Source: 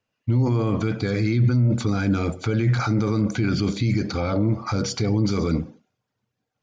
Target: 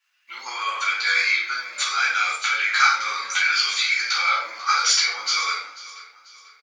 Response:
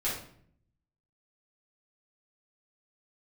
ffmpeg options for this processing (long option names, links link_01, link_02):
-filter_complex "[0:a]highpass=frequency=1300:width=0.5412,highpass=frequency=1300:width=1.3066,aecho=1:1:491|982|1473:0.126|0.0504|0.0201[link_01];[1:a]atrim=start_sample=2205,afade=type=out:start_time=0.23:duration=0.01,atrim=end_sample=10584[link_02];[link_01][link_02]afir=irnorm=-1:irlink=0,volume=8.5dB"